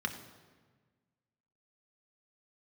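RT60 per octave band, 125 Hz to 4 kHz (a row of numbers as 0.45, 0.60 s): 1.9, 1.8, 1.5, 1.4, 1.3, 1.1 s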